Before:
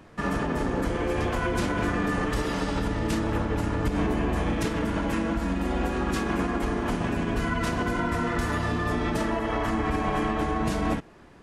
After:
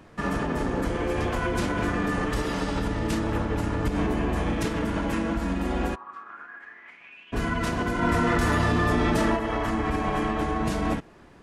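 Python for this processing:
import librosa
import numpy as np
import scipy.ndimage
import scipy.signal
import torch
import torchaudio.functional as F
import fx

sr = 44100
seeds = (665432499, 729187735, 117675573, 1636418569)

y = fx.bandpass_q(x, sr, hz=fx.line((5.94, 1000.0), (7.32, 2900.0)), q=9.0, at=(5.94, 7.32), fade=0.02)
y = fx.env_flatten(y, sr, amount_pct=100, at=(8.01, 9.35), fade=0.02)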